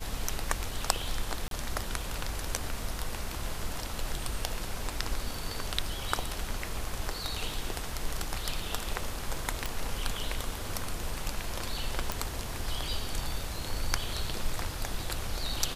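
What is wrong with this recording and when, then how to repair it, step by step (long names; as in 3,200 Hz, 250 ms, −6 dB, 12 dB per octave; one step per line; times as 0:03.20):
0:01.48–0:01.51: drop-out 32 ms
0:09.66: click
0:12.12: click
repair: click removal
repair the gap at 0:01.48, 32 ms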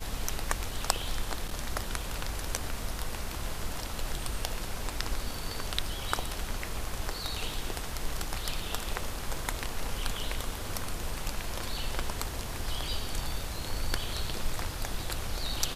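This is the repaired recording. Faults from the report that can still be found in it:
none of them is left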